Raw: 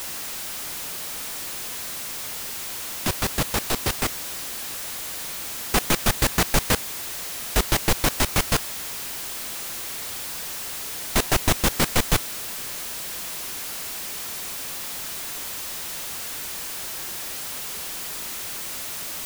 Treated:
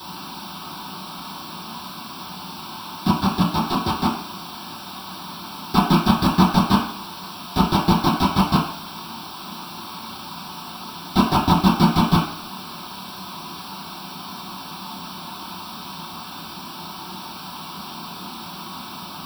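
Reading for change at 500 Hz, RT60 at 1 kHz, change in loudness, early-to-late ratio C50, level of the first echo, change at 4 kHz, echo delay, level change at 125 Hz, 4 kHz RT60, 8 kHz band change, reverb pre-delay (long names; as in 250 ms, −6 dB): 0.0 dB, 0.60 s, +2.0 dB, 6.0 dB, no echo audible, 0.0 dB, no echo audible, +7.5 dB, 0.55 s, −13.0 dB, 3 ms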